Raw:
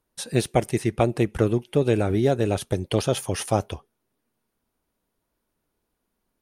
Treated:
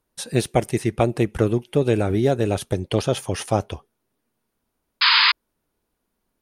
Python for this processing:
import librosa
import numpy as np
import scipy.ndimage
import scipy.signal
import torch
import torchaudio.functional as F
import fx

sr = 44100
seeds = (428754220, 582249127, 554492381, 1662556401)

y = fx.high_shelf(x, sr, hz=11000.0, db=-10.0, at=(2.73, 3.74))
y = fx.spec_paint(y, sr, seeds[0], shape='noise', start_s=5.01, length_s=0.31, low_hz=880.0, high_hz=5100.0, level_db=-17.0)
y = y * 10.0 ** (1.5 / 20.0)